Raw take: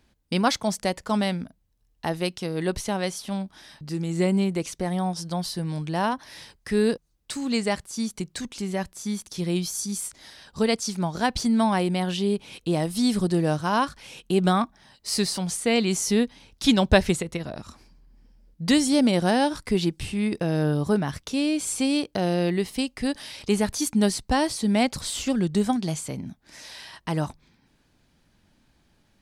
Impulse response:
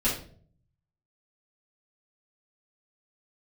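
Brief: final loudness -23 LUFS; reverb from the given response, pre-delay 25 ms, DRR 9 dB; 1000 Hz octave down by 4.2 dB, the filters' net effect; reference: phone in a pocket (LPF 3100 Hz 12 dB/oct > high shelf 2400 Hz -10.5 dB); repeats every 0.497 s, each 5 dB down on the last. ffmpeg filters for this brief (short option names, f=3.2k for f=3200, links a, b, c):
-filter_complex "[0:a]equalizer=f=1k:t=o:g=-4,aecho=1:1:497|994|1491|1988|2485|2982|3479:0.562|0.315|0.176|0.0988|0.0553|0.031|0.0173,asplit=2[a][b];[1:a]atrim=start_sample=2205,adelay=25[c];[b][c]afir=irnorm=-1:irlink=0,volume=-19dB[d];[a][d]amix=inputs=2:normalize=0,lowpass=3.1k,highshelf=f=2.4k:g=-10.5,volume=1dB"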